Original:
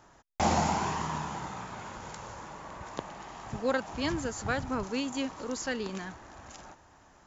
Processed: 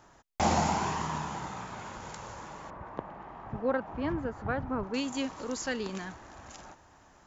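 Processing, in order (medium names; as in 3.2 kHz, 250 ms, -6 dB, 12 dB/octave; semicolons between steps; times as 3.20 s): 2.70–4.94 s: low-pass 1.5 kHz 12 dB/octave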